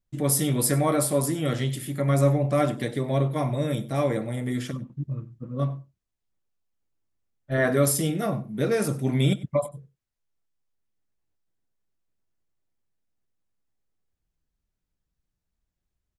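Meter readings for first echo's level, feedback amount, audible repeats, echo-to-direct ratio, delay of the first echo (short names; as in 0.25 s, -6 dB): -20.0 dB, no steady repeat, 1, -20.0 dB, 96 ms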